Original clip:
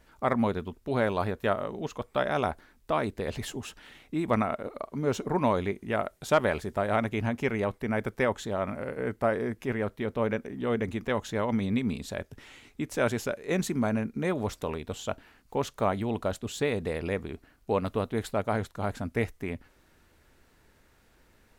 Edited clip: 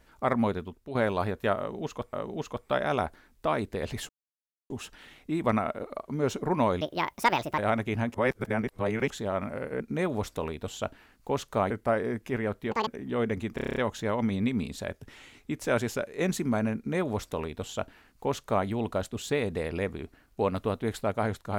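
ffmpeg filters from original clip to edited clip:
ffmpeg -i in.wav -filter_complex "[0:a]asplit=19[link_01][link_02][link_03][link_04][link_05][link_06][link_07][link_08][link_09][link_10][link_11][link_12][link_13][link_14][link_15][link_16][link_17][link_18][link_19];[link_01]atrim=end=0.95,asetpts=PTS-STARTPTS,afade=type=out:start_time=0.49:duration=0.46:silence=0.354813[link_20];[link_02]atrim=start=0.95:end=2.132,asetpts=PTS-STARTPTS,afade=type=in:duration=0.004:curve=hsin:silence=0.354813[link_21];[link_03]atrim=start=1.578:end=3.54,asetpts=PTS-STARTPTS,afade=type=out:start_time=1.958:duration=0.004:curve=hsin,apad=pad_dur=0.61[link_22];[link_04]atrim=start=3.54:end=5.654,asetpts=PTS-STARTPTS,afade=type=in:duration=0.004:curve=hsin[link_23];[link_05]atrim=start=5.65:end=6.84,asetpts=PTS-STARTPTS,asetrate=67914,aresample=44100,atrim=end_sample=34077,asetpts=PTS-STARTPTS[link_24];[link_06]atrim=start=6.836:end=7.402[link_25];[link_07]atrim=start=7.398:end=8.362,asetpts=PTS-STARTPTS,areverse[link_26];[link_08]atrim=start=8.358:end=9.062[link_27];[link_09]atrim=start=14.058:end=15.962[link_28];[link_10]atrim=start=9.058:end=10.074[link_29];[link_11]atrim=start=10.07:end=10.38,asetpts=PTS-STARTPTS,asetrate=87318,aresample=44100[link_30];[link_12]atrim=start=10.376:end=11.092[link_31];[link_13]atrim=start=11.058:end=11.092[link_32];[link_14]atrim=start=11.058:end=11.092[link_33];[link_15]atrim=start=11.058:end=11.092[link_34];[link_16]atrim=start=11.058:end=11.092[link_35];[link_17]atrim=start=11.058:end=11.092[link_36];[link_18]atrim=start=11.058:end=11.092[link_37];[link_19]atrim=start=11.058[link_38];[link_20][link_21]concat=n=2:v=0:a=1[link_39];[link_22][link_23]concat=n=2:v=0:a=1[link_40];[link_39][link_40]acrossfade=duration=0.004:curve1=hsin:curve2=hsin[link_41];[link_41][link_24]acrossfade=duration=0.004:curve1=hsin:curve2=hsin[link_42];[link_42][link_25]acrossfade=duration=0.004:curve1=hsin:curve2=hsin[link_43];[link_43][link_26]acrossfade=duration=0.004:curve1=hsin:curve2=hsin[link_44];[link_44][link_27]acrossfade=duration=0.004:curve1=hsin:curve2=hsin[link_45];[link_45][link_28]acrossfade=duration=0.004:curve1=hsin:curve2=hsin[link_46];[link_46][link_29]acrossfade=duration=0.004:curve1=hsin:curve2=hsin[link_47];[link_47][link_30]acrossfade=duration=0.004:curve1=hsin:curve2=hsin[link_48];[link_48][link_31]acrossfade=duration=0.004:curve1=hsin:curve2=hsin[link_49];[link_49][link_32]acrossfade=duration=0.004:curve1=hsin:curve2=hsin[link_50];[link_50][link_33]acrossfade=duration=0.004:curve1=hsin:curve2=hsin[link_51];[link_51][link_34]acrossfade=duration=0.004:curve1=hsin:curve2=hsin[link_52];[link_52][link_35]acrossfade=duration=0.004:curve1=hsin:curve2=hsin[link_53];[link_53][link_36]acrossfade=duration=0.004:curve1=hsin:curve2=hsin[link_54];[link_54][link_37]acrossfade=duration=0.004:curve1=hsin:curve2=hsin[link_55];[link_55][link_38]acrossfade=duration=0.004:curve1=hsin:curve2=hsin" out.wav

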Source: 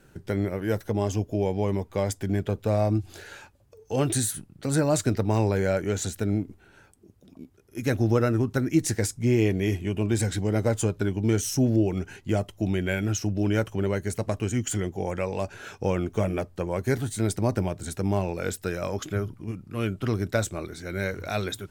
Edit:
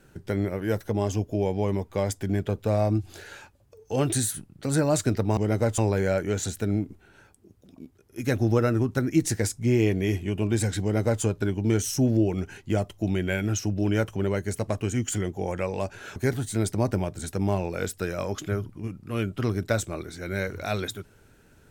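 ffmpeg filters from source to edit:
ffmpeg -i in.wav -filter_complex "[0:a]asplit=4[link_01][link_02][link_03][link_04];[link_01]atrim=end=5.372[link_05];[link_02]atrim=start=10.408:end=10.822[link_06];[link_03]atrim=start=5.368:end=15.752[link_07];[link_04]atrim=start=16.798[link_08];[link_05][link_06]acrossfade=duration=0.004:curve1=hsin:curve2=hsin[link_09];[link_09][link_07]acrossfade=duration=0.004:curve1=hsin:curve2=hsin[link_10];[link_10][link_08]acrossfade=duration=0.004:curve1=hsin:curve2=hsin" out.wav

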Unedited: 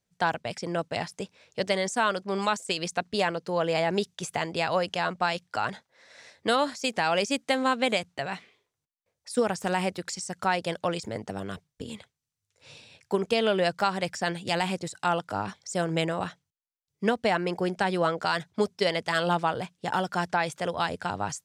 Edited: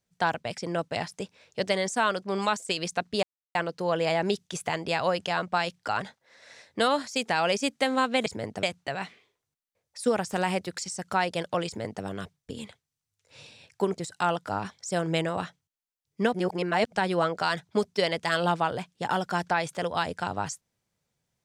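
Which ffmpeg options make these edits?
ffmpeg -i in.wav -filter_complex "[0:a]asplit=7[link_01][link_02][link_03][link_04][link_05][link_06][link_07];[link_01]atrim=end=3.23,asetpts=PTS-STARTPTS,afade=type=out:start_time=3.226:duration=0.004:curve=hsin,apad=pad_dur=0.32[link_08];[link_02]atrim=start=3.23:end=7.942,asetpts=PTS-STARTPTS,afade=type=in:duration=0.004:curve=hsin[link_09];[link_03]atrim=start=10.978:end=11.352[link_10];[link_04]atrim=start=7.938:end=13.282[link_11];[link_05]atrim=start=14.798:end=17.172[link_12];[link_06]atrim=start=17.168:end=17.752,asetpts=PTS-STARTPTS,areverse[link_13];[link_07]atrim=start=17.748[link_14];[link_08][link_09]concat=n=2:v=0:a=1[link_15];[link_15][link_10]acrossfade=duration=0.004:curve1=hsin:curve2=hsin[link_16];[link_16][link_11]acrossfade=duration=0.004:curve1=hsin:curve2=hsin[link_17];[link_17][link_12]acrossfade=duration=0.004:curve1=hsin:curve2=hsin[link_18];[link_18][link_13]acrossfade=duration=0.004:curve1=hsin:curve2=hsin[link_19];[link_19][link_14]acrossfade=duration=0.004:curve1=hsin:curve2=hsin" out.wav

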